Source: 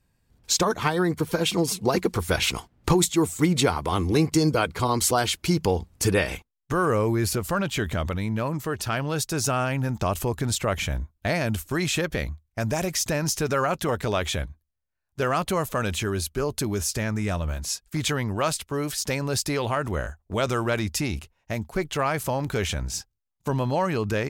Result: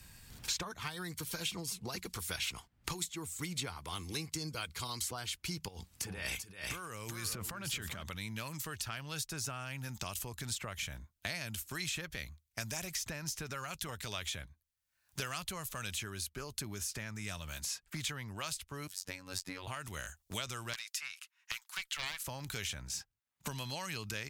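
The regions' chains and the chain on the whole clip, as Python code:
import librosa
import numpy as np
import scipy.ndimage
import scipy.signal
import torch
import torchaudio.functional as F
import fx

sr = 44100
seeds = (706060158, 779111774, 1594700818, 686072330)

y = fx.chain(x, sr, fx.over_compress(threshold_db=-30.0, ratio=-1.0),
    fx.echo_single(ms=386, db=-8.5), at=(5.68, 8.03))
y = fx.chain(y, sr, fx.robotise(hz=92.7),
    fx.upward_expand(threshold_db=-39.0, expansion=2.5), at=(18.87, 19.67))
y = fx.chain(y, sr, fx.steep_highpass(hz=1100.0, slope=36),
    fx.doppler_dist(depth_ms=0.48), at=(20.73, 22.27))
y = fx.tone_stack(y, sr, knobs='5-5-5')
y = fx.band_squash(y, sr, depth_pct=100)
y = F.gain(torch.from_numpy(y), -3.0).numpy()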